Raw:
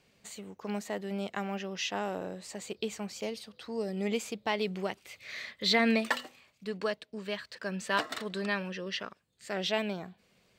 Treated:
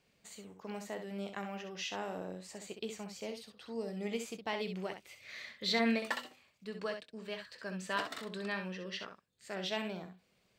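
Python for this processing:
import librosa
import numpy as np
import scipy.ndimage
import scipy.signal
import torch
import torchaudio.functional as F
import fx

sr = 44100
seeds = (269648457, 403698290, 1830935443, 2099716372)

y = fx.room_early_taps(x, sr, ms=(22, 65), db=(-13.0, -7.5))
y = F.gain(torch.from_numpy(y), -6.5).numpy()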